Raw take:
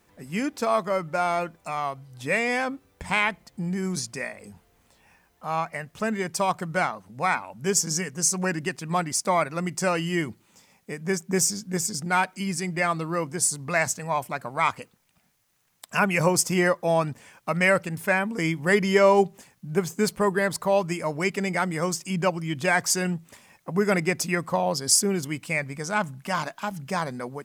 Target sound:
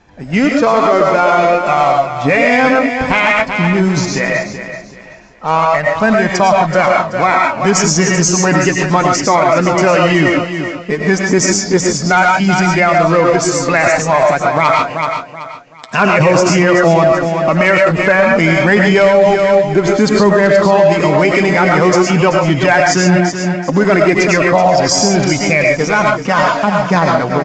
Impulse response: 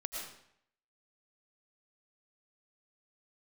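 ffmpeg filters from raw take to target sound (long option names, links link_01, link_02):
-filter_complex "[0:a]lowpass=frequency=2900:poles=1,equalizer=frequency=280:width_type=o:width=0.45:gain=3.5,asplit=2[link_01][link_02];[link_02]acrusher=bits=4:mix=0:aa=0.5,volume=-10dB[link_03];[link_01][link_03]amix=inputs=2:normalize=0,flanger=delay=1.2:depth=6.9:regen=43:speed=0.16:shape=sinusoidal,aresample=16000,volume=15dB,asoftclip=hard,volume=-15dB,aresample=44100,aecho=1:1:380|760|1140:0.282|0.0846|0.0254[link_04];[1:a]atrim=start_sample=2205,atrim=end_sample=6615[link_05];[link_04][link_05]afir=irnorm=-1:irlink=0,alimiter=level_in=22dB:limit=-1dB:release=50:level=0:latency=1,volume=-1dB"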